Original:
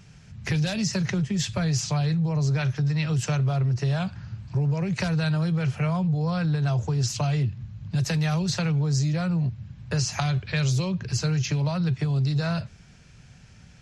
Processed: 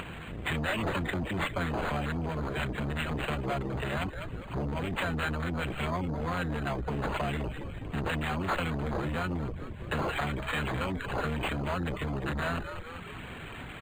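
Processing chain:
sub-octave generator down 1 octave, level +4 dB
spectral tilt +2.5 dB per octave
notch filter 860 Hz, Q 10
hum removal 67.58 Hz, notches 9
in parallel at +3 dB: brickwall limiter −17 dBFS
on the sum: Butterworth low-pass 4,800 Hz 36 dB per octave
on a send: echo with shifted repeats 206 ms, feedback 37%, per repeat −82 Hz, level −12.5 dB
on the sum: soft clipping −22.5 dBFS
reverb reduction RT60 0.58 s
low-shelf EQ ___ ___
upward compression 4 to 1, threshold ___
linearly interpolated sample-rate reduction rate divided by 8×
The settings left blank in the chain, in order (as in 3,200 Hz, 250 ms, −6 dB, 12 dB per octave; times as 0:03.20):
260 Hz, −8 dB, −33 dBFS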